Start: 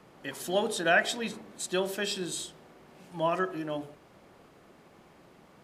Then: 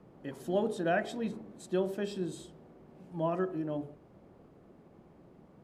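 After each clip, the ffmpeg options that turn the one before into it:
-af "tiltshelf=f=920:g=9.5,volume=-6.5dB"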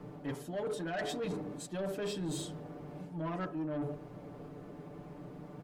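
-af "aecho=1:1:6.8:0.88,areverse,acompressor=threshold=-37dB:ratio=20,areverse,asoftclip=type=tanh:threshold=-39dB,volume=7.5dB"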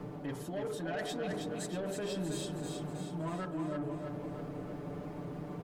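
-filter_complex "[0:a]acompressor=threshold=-45dB:ratio=2.5,asplit=2[a][b];[b]aecho=0:1:319|638|957|1276|1595|1914|2233:0.562|0.304|0.164|0.0885|0.0478|0.0258|0.0139[c];[a][c]amix=inputs=2:normalize=0,volume=5.5dB"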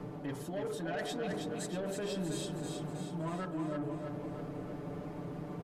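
-af "aresample=32000,aresample=44100"

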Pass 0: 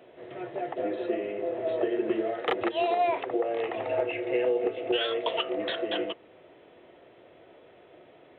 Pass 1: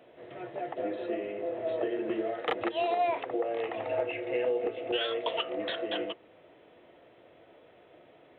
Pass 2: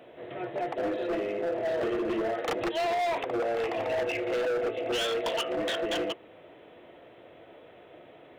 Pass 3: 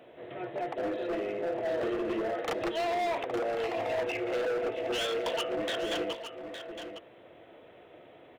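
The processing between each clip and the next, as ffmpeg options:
-af "bandreject=f=380:w=12,volume=-2.5dB"
-af "asoftclip=type=hard:threshold=-31.5dB,volume=5.5dB"
-af "aecho=1:1:862:0.335,volume=-2.5dB"

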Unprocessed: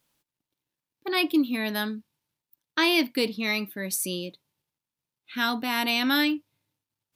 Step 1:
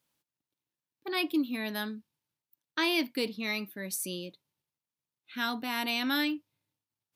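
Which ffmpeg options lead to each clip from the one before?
-af "highpass=60,volume=-6dB"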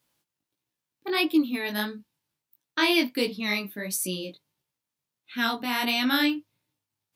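-af "flanger=delay=15.5:depth=5.4:speed=1.5,volume=8.5dB"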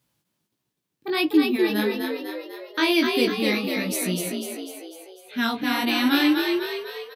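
-filter_complex "[0:a]equalizer=f=120:w=0.61:g=9,asplit=2[a][b];[b]asplit=7[c][d][e][f][g][h][i];[c]adelay=249,afreqshift=49,volume=-4dB[j];[d]adelay=498,afreqshift=98,volume=-9.2dB[k];[e]adelay=747,afreqshift=147,volume=-14.4dB[l];[f]adelay=996,afreqshift=196,volume=-19.6dB[m];[g]adelay=1245,afreqshift=245,volume=-24.8dB[n];[h]adelay=1494,afreqshift=294,volume=-30dB[o];[i]adelay=1743,afreqshift=343,volume=-35.2dB[p];[j][k][l][m][n][o][p]amix=inputs=7:normalize=0[q];[a][q]amix=inputs=2:normalize=0"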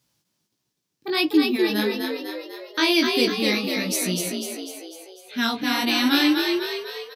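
-af "equalizer=f=5.5k:w=1.3:g=8"

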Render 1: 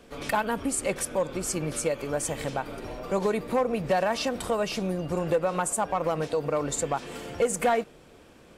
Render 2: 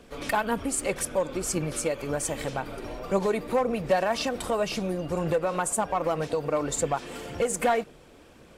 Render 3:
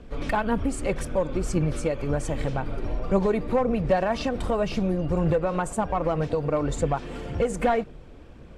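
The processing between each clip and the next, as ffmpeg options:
-af "aphaser=in_gain=1:out_gain=1:delay=3.9:decay=0.3:speed=1.9:type=triangular"
-af "aemphasis=mode=reproduction:type=bsi"

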